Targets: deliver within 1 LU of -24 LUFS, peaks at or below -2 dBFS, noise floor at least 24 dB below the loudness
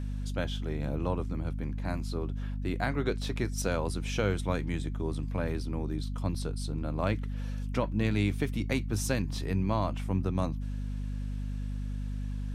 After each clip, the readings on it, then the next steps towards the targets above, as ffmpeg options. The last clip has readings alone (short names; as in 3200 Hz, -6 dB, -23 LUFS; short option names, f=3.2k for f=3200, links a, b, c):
hum 50 Hz; harmonics up to 250 Hz; hum level -31 dBFS; loudness -33.0 LUFS; peak -12.5 dBFS; loudness target -24.0 LUFS
-> -af "bandreject=f=50:t=h:w=4,bandreject=f=100:t=h:w=4,bandreject=f=150:t=h:w=4,bandreject=f=200:t=h:w=4,bandreject=f=250:t=h:w=4"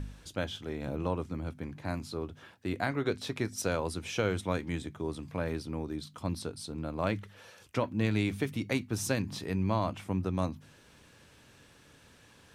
hum none; loudness -34.5 LUFS; peak -13.5 dBFS; loudness target -24.0 LUFS
-> -af "volume=10.5dB"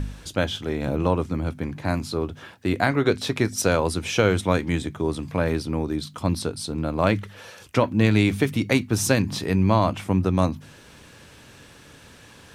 loudness -24.0 LUFS; peak -3.0 dBFS; noise floor -49 dBFS